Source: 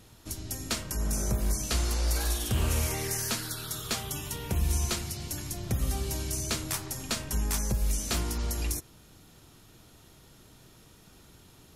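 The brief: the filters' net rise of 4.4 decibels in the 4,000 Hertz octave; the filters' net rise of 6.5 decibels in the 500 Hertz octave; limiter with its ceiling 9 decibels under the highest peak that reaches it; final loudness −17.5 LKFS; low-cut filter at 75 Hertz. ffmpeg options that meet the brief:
ffmpeg -i in.wav -af "highpass=75,equalizer=frequency=500:width_type=o:gain=8.5,equalizer=frequency=4000:width_type=o:gain=5.5,volume=14.5dB,alimiter=limit=-7dB:level=0:latency=1" out.wav

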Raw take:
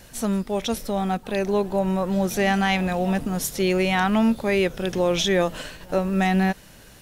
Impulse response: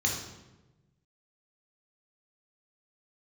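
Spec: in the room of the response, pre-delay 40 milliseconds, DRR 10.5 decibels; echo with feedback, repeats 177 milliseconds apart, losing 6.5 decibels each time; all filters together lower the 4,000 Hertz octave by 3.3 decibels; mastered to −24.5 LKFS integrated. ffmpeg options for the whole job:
-filter_complex "[0:a]equalizer=frequency=4000:width_type=o:gain=-4.5,aecho=1:1:177|354|531|708|885|1062:0.473|0.222|0.105|0.0491|0.0231|0.0109,asplit=2[link_01][link_02];[1:a]atrim=start_sample=2205,adelay=40[link_03];[link_02][link_03]afir=irnorm=-1:irlink=0,volume=-18.5dB[link_04];[link_01][link_04]amix=inputs=2:normalize=0,volume=-3dB"

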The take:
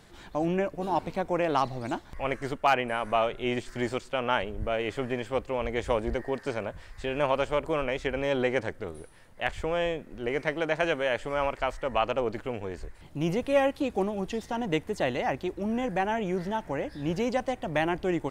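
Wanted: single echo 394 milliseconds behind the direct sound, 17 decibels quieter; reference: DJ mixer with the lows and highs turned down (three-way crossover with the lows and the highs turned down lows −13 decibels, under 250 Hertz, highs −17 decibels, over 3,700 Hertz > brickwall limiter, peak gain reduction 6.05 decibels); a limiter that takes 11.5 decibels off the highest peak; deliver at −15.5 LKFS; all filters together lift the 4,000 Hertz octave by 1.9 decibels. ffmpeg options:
ffmpeg -i in.wav -filter_complex "[0:a]equalizer=frequency=4000:width_type=o:gain=7.5,alimiter=limit=-20dB:level=0:latency=1,acrossover=split=250 3700:gain=0.224 1 0.141[link_01][link_02][link_03];[link_01][link_02][link_03]amix=inputs=3:normalize=0,aecho=1:1:394:0.141,volume=19.5dB,alimiter=limit=-4dB:level=0:latency=1" out.wav

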